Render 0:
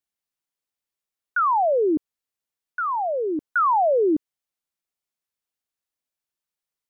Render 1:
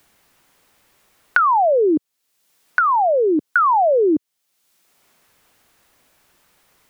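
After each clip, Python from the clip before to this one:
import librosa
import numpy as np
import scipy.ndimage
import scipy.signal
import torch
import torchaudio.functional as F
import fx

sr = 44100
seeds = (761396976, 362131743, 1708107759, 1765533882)

y = fx.band_squash(x, sr, depth_pct=100)
y = F.gain(torch.from_numpy(y), 4.5).numpy()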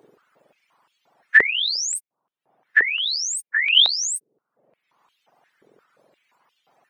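y = fx.octave_mirror(x, sr, pivot_hz=1600.0)
y = fx.dereverb_blind(y, sr, rt60_s=0.75)
y = fx.filter_held_highpass(y, sr, hz=5.7, low_hz=430.0, high_hz=3100.0)
y = F.gain(torch.from_numpy(y), -2.0).numpy()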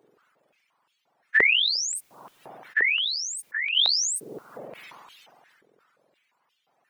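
y = fx.sustainer(x, sr, db_per_s=24.0)
y = F.gain(torch.from_numpy(y), -8.5).numpy()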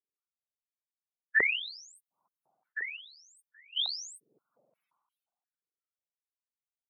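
y = fx.bin_expand(x, sr, power=1.5)
y = fx.upward_expand(y, sr, threshold_db=-33.0, expansion=2.5)
y = F.gain(torch.from_numpy(y), -2.5).numpy()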